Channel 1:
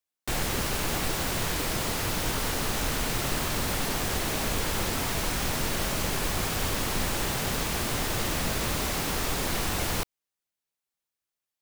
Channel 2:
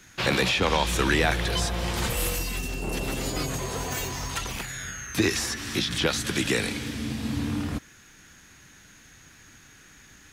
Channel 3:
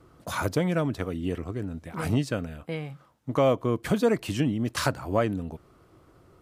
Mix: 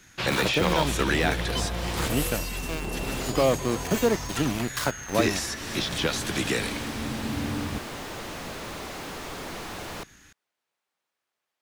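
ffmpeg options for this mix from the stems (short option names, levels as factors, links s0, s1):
-filter_complex "[0:a]acrossover=split=450|3000[s0][s1][s2];[s1]acompressor=threshold=0.0141:ratio=6[s3];[s0][s3][s2]amix=inputs=3:normalize=0,asplit=2[s4][s5];[s5]highpass=f=720:p=1,volume=35.5,asoftclip=type=tanh:threshold=0.2[s6];[s4][s6]amix=inputs=2:normalize=0,lowpass=f=1200:p=1,volume=0.501,volume=0.355[s7];[1:a]volume=0.794[s8];[2:a]acrossover=split=140|3000[s9][s10][s11];[s9]acompressor=threshold=0.00891:ratio=6[s12];[s12][s10][s11]amix=inputs=3:normalize=0,aeval=exprs='val(0)*gte(abs(val(0)),0.0422)':c=same,volume=1,asplit=2[s13][s14];[s14]apad=whole_len=512321[s15];[s7][s15]sidechaincompress=threshold=0.01:ratio=8:attack=47:release=401[s16];[s16][s8][s13]amix=inputs=3:normalize=0"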